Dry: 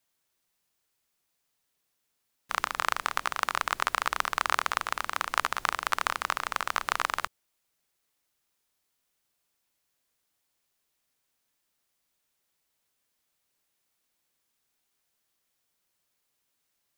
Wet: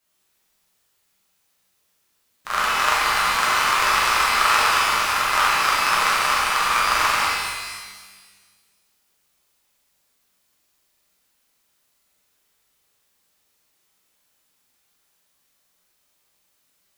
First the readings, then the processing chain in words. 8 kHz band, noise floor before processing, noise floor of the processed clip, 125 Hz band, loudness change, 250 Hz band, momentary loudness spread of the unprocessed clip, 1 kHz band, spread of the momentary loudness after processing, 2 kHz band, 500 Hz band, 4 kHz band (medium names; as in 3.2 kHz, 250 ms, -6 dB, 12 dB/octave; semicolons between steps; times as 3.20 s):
+13.0 dB, -79 dBFS, -68 dBFS, +10.5 dB, +11.0 dB, +10.0 dB, 3 LU, +10.5 dB, 7 LU, +11.0 dB, +10.0 dB, +13.5 dB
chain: reverse echo 44 ms -3 dB; pitch-shifted reverb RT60 1.5 s, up +12 st, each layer -8 dB, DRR -7.5 dB